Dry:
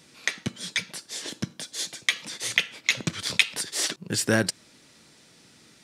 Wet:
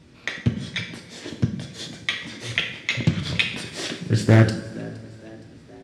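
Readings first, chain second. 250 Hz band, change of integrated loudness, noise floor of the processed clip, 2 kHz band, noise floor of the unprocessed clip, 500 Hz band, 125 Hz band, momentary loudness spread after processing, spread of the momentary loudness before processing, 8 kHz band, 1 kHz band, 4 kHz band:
+8.0 dB, +3.0 dB, −48 dBFS, 0.0 dB, −56 dBFS, +5.0 dB, +15.0 dB, 19 LU, 11 LU, −9.5 dB, +4.5 dB, −1.0 dB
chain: RIAA equalisation playback
on a send: echo with shifted repeats 467 ms, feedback 53%, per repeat +54 Hz, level −21 dB
on the sum: coupled-rooms reverb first 0.59 s, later 2.6 s, from −15 dB, DRR 3 dB
dynamic equaliser 3,400 Hz, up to +4 dB, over −40 dBFS, Q 1.7
highs frequency-modulated by the lows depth 0.4 ms

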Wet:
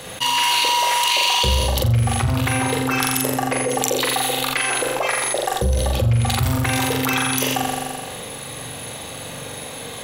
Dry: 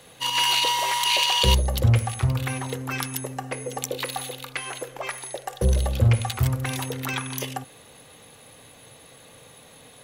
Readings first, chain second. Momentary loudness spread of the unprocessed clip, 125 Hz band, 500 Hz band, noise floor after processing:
13 LU, +2.5 dB, +8.0 dB, −33 dBFS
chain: noise gate with hold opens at −35 dBFS
soft clipping −7 dBFS, distortion −26 dB
on a send: flutter between parallel walls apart 7.3 metres, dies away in 0.73 s
on the sum: envelope flattener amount 70%
level −5 dB

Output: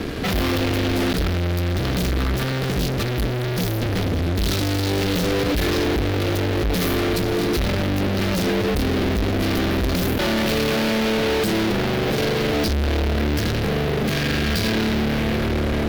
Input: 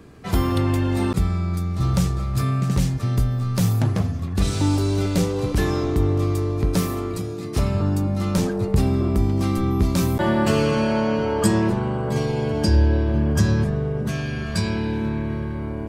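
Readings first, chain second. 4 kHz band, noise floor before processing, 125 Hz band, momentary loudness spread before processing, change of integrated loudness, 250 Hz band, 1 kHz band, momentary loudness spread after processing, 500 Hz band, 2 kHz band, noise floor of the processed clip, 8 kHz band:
+9.0 dB, −29 dBFS, −2.5 dB, 6 LU, +0.5 dB, +0.5 dB, +1.5 dB, 3 LU, +2.5 dB, +7.5 dB, −23 dBFS, +1.5 dB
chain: fuzz pedal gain 44 dB, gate −50 dBFS
graphic EQ with 10 bands 125 Hz −7 dB, 1,000 Hz −8 dB, 4,000 Hz +3 dB, 8,000 Hz −10 dB
level −4 dB

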